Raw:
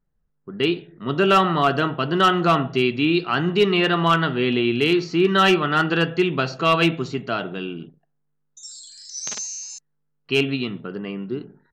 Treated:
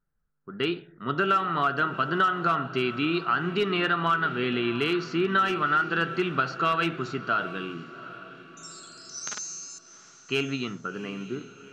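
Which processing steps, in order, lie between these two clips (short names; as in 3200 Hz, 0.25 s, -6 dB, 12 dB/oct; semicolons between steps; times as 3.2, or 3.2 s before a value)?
bell 1400 Hz +12.5 dB 0.55 oct; compressor 6:1, threshold -15 dBFS, peak gain reduction 12 dB; on a send: diffused feedback echo 0.755 s, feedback 43%, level -15 dB; on the sum: gain -6 dB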